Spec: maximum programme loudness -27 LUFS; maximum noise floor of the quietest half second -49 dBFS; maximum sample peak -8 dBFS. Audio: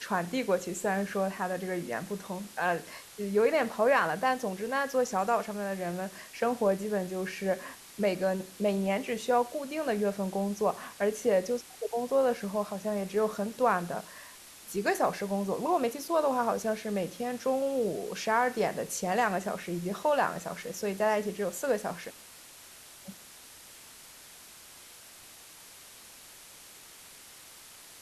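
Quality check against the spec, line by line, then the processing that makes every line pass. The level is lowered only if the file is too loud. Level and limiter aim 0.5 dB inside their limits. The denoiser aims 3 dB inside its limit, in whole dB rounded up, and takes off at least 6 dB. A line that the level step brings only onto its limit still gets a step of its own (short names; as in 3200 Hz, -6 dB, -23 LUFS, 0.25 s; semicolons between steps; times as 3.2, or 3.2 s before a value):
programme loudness -30.5 LUFS: OK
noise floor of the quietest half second -51 dBFS: OK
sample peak -13.0 dBFS: OK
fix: none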